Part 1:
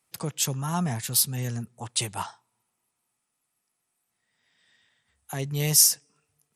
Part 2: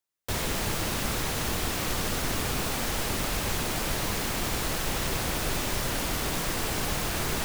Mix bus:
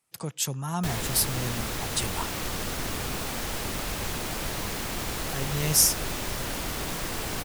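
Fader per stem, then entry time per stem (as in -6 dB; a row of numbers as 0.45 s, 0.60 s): -2.5 dB, -2.5 dB; 0.00 s, 0.55 s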